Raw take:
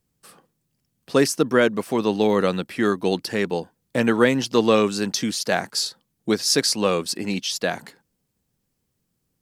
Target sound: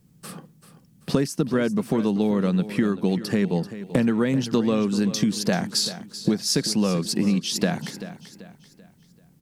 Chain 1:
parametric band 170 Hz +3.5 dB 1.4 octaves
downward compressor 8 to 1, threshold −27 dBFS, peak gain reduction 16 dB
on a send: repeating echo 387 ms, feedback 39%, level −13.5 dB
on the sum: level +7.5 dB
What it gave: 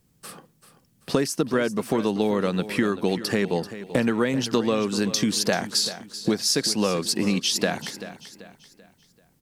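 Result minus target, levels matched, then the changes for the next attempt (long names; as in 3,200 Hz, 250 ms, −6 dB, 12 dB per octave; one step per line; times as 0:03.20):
125 Hz band −4.0 dB
change: parametric band 170 Hz +14.5 dB 1.4 octaves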